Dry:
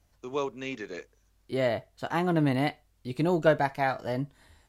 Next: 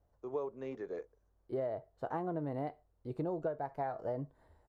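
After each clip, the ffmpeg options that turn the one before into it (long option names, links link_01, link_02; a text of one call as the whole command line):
ffmpeg -i in.wav -af "firequalizer=gain_entry='entry(150,0);entry(230,-3);entry(450,7);entry(2500,-16)':delay=0.05:min_phase=1,acompressor=threshold=-26dB:ratio=16,volume=-6.5dB" out.wav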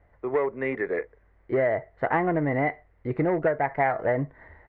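ffmpeg -i in.wav -filter_complex "[0:a]asplit=2[link_01][link_02];[link_02]volume=34dB,asoftclip=hard,volume=-34dB,volume=-6dB[link_03];[link_01][link_03]amix=inputs=2:normalize=0,lowpass=frequency=2000:width_type=q:width=9.1,volume=9dB" out.wav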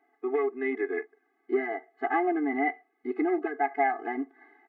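ffmpeg -i in.wav -af "afftfilt=real='re*eq(mod(floor(b*sr/1024/220),2),1)':imag='im*eq(mod(floor(b*sr/1024/220),2),1)':win_size=1024:overlap=0.75" out.wav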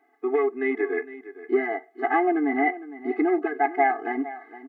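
ffmpeg -i in.wav -af "aecho=1:1:459:0.168,volume=4.5dB" out.wav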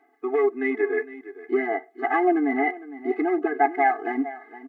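ffmpeg -i in.wav -af "aphaser=in_gain=1:out_gain=1:delay=4.8:decay=0.32:speed=0.56:type=sinusoidal" out.wav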